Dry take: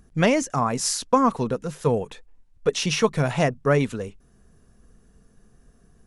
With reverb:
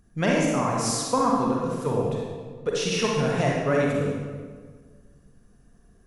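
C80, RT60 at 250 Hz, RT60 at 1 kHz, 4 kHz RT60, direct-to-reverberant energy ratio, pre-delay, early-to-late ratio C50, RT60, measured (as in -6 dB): 1.5 dB, 2.0 s, 1.6 s, 1.1 s, -3.0 dB, 36 ms, -1.0 dB, 1.6 s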